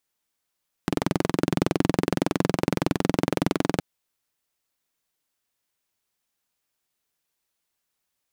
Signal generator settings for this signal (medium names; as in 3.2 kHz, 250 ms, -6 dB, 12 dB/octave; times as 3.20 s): single-cylinder engine model, steady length 2.92 s, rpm 2600, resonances 180/280 Hz